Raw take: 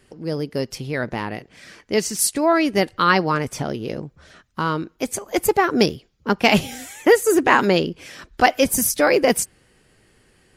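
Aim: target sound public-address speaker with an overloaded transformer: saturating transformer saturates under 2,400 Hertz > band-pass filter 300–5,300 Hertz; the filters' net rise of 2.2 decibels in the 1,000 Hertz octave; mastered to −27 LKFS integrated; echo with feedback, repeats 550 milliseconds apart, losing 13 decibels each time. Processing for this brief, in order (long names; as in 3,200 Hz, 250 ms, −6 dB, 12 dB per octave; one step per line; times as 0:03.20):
parametric band 1,000 Hz +3 dB
repeating echo 550 ms, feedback 22%, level −13 dB
saturating transformer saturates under 2,400 Hz
band-pass filter 300–5,300 Hz
level −3.5 dB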